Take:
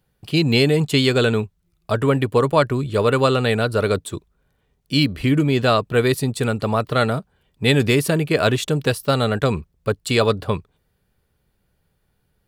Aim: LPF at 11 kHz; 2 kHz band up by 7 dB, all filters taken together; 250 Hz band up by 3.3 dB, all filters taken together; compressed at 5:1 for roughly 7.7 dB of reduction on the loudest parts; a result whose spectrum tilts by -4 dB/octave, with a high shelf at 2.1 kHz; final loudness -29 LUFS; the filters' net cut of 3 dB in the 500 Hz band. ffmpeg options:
-af "lowpass=11000,equalizer=f=250:t=o:g=5.5,equalizer=f=500:t=o:g=-6,equalizer=f=2000:t=o:g=6.5,highshelf=f=2100:g=5,acompressor=threshold=0.141:ratio=5,volume=0.447"

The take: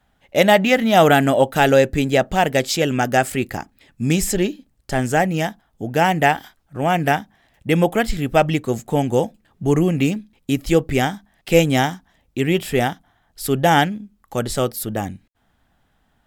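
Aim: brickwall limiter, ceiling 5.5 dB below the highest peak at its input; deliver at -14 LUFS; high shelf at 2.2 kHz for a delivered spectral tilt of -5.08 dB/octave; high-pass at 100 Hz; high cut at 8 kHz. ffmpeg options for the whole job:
-af "highpass=100,lowpass=8000,highshelf=f=2200:g=-3,volume=2.11,alimiter=limit=0.944:level=0:latency=1"

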